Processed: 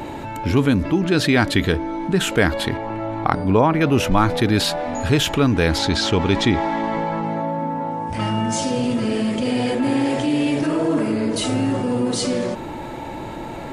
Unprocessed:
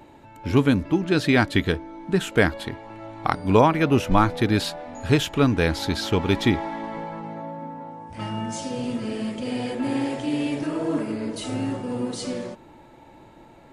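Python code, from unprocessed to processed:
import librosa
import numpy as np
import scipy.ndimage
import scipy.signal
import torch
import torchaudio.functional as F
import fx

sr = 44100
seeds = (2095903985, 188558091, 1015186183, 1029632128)

y = fx.high_shelf(x, sr, hz=2600.0, db=-10.0, at=(2.77, 3.81))
y = fx.lowpass(y, sr, hz=8800.0, slope=24, at=(5.78, 7.24))
y = fx.env_flatten(y, sr, amount_pct=50)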